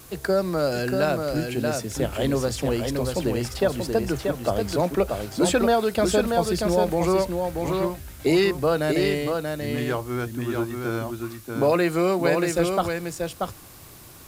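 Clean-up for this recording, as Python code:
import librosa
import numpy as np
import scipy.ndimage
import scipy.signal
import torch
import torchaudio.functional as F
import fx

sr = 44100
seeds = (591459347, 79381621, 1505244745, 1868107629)

y = fx.noise_reduce(x, sr, print_start_s=13.68, print_end_s=14.18, reduce_db=30.0)
y = fx.fix_echo_inverse(y, sr, delay_ms=634, level_db=-4.5)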